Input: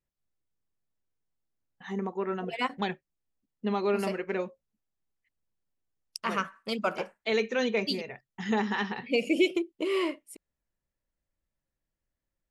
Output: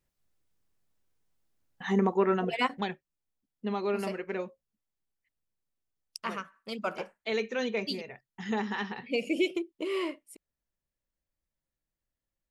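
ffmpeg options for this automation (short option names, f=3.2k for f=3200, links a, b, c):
-af "volume=15.5dB,afade=t=out:st=2.12:d=0.77:silence=0.298538,afade=t=out:st=6.26:d=0.18:silence=0.375837,afade=t=in:st=6.44:d=0.45:silence=0.398107"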